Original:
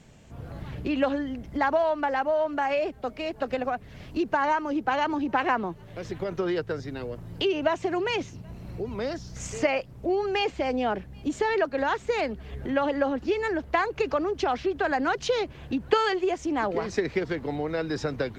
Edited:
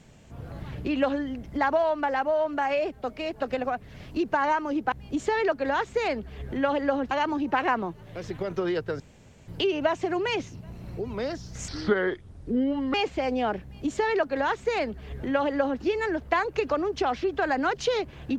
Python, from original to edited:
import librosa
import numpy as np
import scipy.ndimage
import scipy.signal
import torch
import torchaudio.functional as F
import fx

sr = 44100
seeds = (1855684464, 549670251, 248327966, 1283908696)

y = fx.edit(x, sr, fx.room_tone_fill(start_s=6.81, length_s=0.48),
    fx.speed_span(start_s=9.49, length_s=0.87, speed=0.69),
    fx.duplicate(start_s=11.05, length_s=2.19, to_s=4.92), tone=tone)